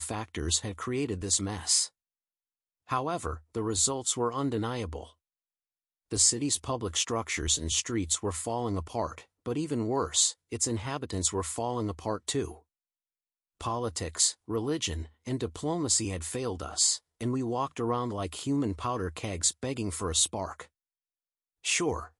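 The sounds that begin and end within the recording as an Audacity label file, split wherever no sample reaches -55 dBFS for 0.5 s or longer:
2.870000	5.130000	sound
6.110000	12.600000	sound
13.600000	20.670000	sound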